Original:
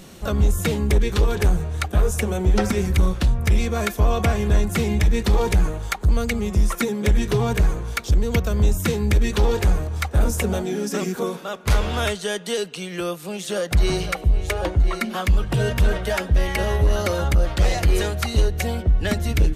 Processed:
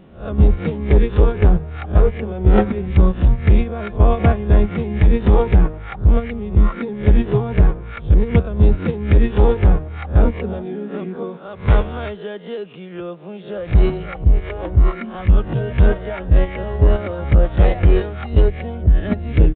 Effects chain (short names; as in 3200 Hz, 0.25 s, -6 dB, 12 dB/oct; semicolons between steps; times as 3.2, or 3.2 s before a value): spectral swells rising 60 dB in 0.36 s; gate -17 dBFS, range -9 dB; HPF 430 Hz 6 dB/oct; tilt -4.5 dB/oct; downsampling 8000 Hz; gain +4 dB